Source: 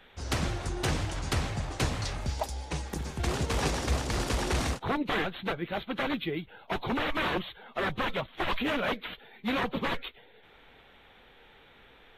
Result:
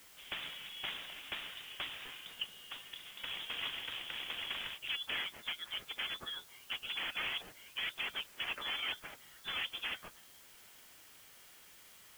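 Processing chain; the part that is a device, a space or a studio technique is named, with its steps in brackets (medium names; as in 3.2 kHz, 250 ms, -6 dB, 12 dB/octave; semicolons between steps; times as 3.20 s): scrambled radio voice (band-pass 370–2800 Hz; frequency inversion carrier 3.7 kHz; white noise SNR 16 dB); trim -7 dB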